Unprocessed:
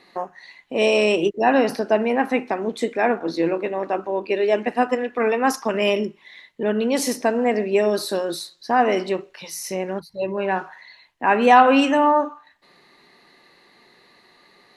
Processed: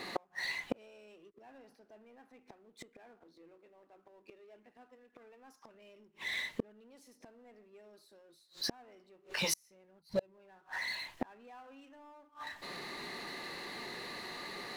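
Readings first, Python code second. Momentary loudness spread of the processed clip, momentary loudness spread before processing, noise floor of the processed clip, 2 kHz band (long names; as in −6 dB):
22 LU, 12 LU, −70 dBFS, −16.0 dB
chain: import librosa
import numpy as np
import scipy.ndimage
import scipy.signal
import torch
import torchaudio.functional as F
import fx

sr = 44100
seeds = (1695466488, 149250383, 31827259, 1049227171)

y = fx.power_curve(x, sr, exponent=0.7)
y = fx.gate_flip(y, sr, shuts_db=-16.0, range_db=-38)
y = F.gain(torch.from_numpy(y), -5.0).numpy()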